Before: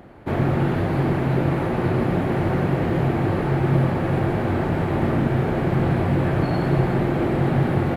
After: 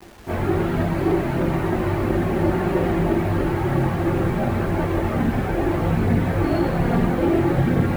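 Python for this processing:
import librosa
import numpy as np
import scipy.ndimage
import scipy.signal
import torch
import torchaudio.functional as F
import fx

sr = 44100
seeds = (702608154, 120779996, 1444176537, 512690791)

y = fx.chorus_voices(x, sr, voices=6, hz=0.3, base_ms=21, depth_ms=3.0, mix_pct=70)
y = fx.rev_fdn(y, sr, rt60_s=3.3, lf_ratio=1.0, hf_ratio=0.7, size_ms=51.0, drr_db=8.5)
y = fx.quant_dither(y, sr, seeds[0], bits=8, dither='none')
y = y * librosa.db_to_amplitude(2.0)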